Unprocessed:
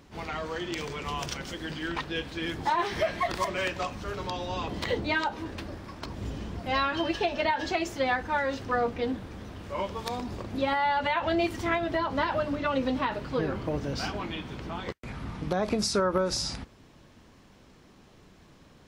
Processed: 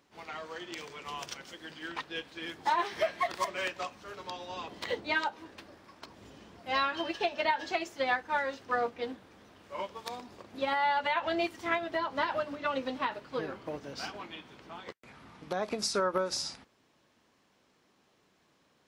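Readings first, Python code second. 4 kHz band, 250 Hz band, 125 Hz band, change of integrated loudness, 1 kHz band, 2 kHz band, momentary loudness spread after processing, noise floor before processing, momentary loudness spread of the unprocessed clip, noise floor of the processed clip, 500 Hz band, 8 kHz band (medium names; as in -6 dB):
-3.5 dB, -9.0 dB, -16.0 dB, -3.5 dB, -3.0 dB, -2.5 dB, 18 LU, -56 dBFS, 11 LU, -70 dBFS, -4.5 dB, -3.5 dB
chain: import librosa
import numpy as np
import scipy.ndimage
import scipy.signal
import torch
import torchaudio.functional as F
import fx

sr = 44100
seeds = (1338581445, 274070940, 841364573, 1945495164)

y = fx.highpass(x, sr, hz=440.0, slope=6)
y = fx.upward_expand(y, sr, threshold_db=-42.0, expansion=1.5)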